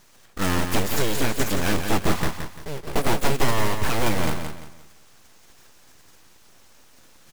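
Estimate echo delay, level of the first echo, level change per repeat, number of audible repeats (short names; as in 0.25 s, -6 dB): 0.172 s, -7.0 dB, -10.0 dB, 3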